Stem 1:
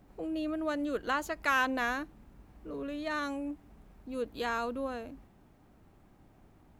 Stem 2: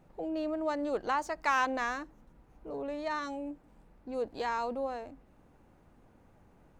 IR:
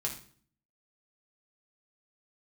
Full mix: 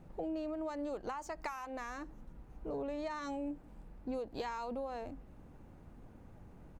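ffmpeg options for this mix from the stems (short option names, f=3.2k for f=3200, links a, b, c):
-filter_complex "[0:a]volume=-17.5dB[a];[1:a]acompressor=threshold=-37dB:ratio=8,volume=-1,adelay=0.6,volume=0.5dB[b];[a][b]amix=inputs=2:normalize=0,lowshelf=f=300:g=8"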